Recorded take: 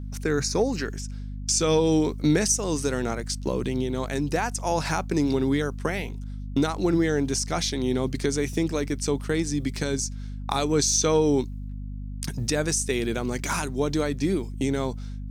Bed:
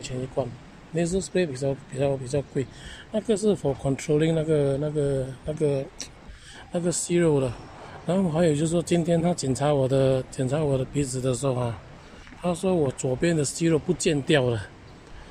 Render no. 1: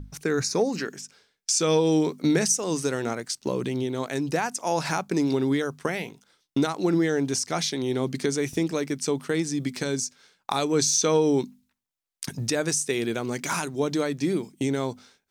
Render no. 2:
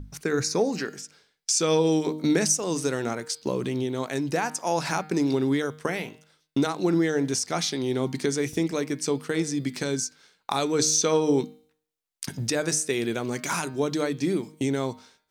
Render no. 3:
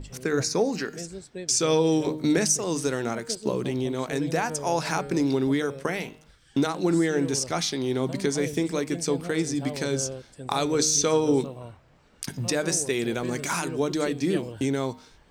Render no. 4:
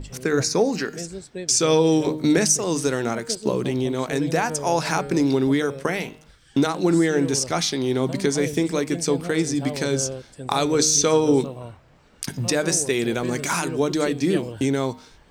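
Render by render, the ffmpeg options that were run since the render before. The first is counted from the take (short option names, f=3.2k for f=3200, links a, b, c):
-af "bandreject=f=50:t=h:w=6,bandreject=f=100:t=h:w=6,bandreject=f=150:t=h:w=6,bandreject=f=200:t=h:w=6,bandreject=f=250:t=h:w=6"
-af "bandreject=f=154.4:t=h:w=4,bandreject=f=308.8:t=h:w=4,bandreject=f=463.2:t=h:w=4,bandreject=f=617.6:t=h:w=4,bandreject=f=772:t=h:w=4,bandreject=f=926.4:t=h:w=4,bandreject=f=1.0808k:t=h:w=4,bandreject=f=1.2352k:t=h:w=4,bandreject=f=1.3896k:t=h:w=4,bandreject=f=1.544k:t=h:w=4,bandreject=f=1.6984k:t=h:w=4,bandreject=f=1.8528k:t=h:w=4,bandreject=f=2.0072k:t=h:w=4,bandreject=f=2.1616k:t=h:w=4,bandreject=f=2.316k:t=h:w=4,bandreject=f=2.4704k:t=h:w=4,bandreject=f=2.6248k:t=h:w=4,bandreject=f=2.7792k:t=h:w=4,bandreject=f=2.9336k:t=h:w=4,bandreject=f=3.088k:t=h:w=4,bandreject=f=3.2424k:t=h:w=4,bandreject=f=3.3968k:t=h:w=4,bandreject=f=3.5512k:t=h:w=4,bandreject=f=3.7056k:t=h:w=4,bandreject=f=3.86k:t=h:w=4,bandreject=f=4.0144k:t=h:w=4,bandreject=f=4.1688k:t=h:w=4,bandreject=f=4.3232k:t=h:w=4,bandreject=f=4.4776k:t=h:w=4,bandreject=f=4.632k:t=h:w=4,bandreject=f=4.7864k:t=h:w=4,bandreject=f=4.9408k:t=h:w=4"
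-filter_complex "[1:a]volume=-14dB[a];[0:a][a]amix=inputs=2:normalize=0"
-af "volume=4dB"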